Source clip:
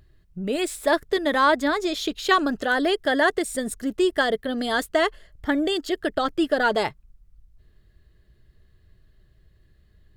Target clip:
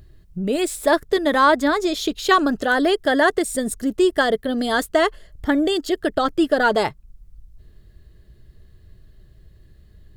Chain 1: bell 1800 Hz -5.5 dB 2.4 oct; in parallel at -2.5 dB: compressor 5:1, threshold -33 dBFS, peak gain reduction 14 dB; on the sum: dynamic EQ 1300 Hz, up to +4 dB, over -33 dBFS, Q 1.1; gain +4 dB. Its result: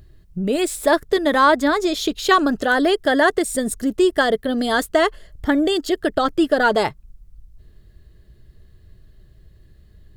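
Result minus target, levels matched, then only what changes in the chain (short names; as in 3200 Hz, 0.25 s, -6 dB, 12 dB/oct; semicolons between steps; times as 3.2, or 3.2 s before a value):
compressor: peak gain reduction -7.5 dB
change: compressor 5:1, threshold -42.5 dBFS, peak gain reduction 22 dB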